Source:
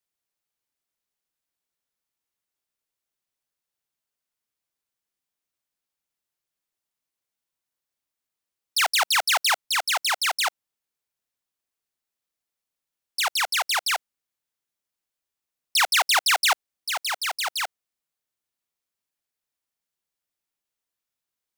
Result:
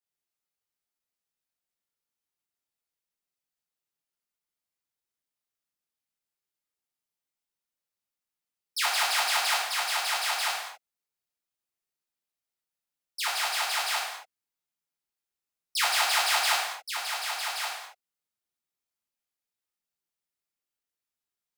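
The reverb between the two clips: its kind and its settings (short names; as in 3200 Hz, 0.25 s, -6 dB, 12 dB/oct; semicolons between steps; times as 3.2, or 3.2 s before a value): non-linear reverb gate 0.3 s falling, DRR -6.5 dB; gain -11.5 dB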